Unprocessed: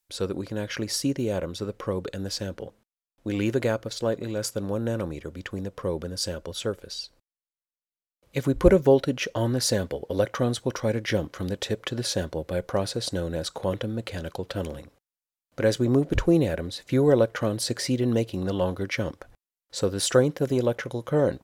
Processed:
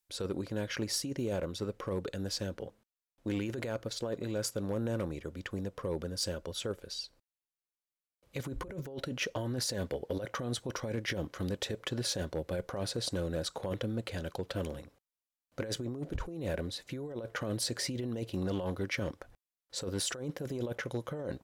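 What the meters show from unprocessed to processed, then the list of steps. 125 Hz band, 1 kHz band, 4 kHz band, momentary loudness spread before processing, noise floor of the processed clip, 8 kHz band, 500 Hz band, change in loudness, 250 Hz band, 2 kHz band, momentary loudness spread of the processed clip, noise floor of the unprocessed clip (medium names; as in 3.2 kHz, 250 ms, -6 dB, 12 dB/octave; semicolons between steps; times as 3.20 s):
-9.0 dB, -9.5 dB, -5.5 dB, 12 LU, under -85 dBFS, -6.0 dB, -12.0 dB, -10.0 dB, -10.5 dB, -7.0 dB, 7 LU, under -85 dBFS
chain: compressor with a negative ratio -27 dBFS, ratio -1; overload inside the chain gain 17.5 dB; trim -7.5 dB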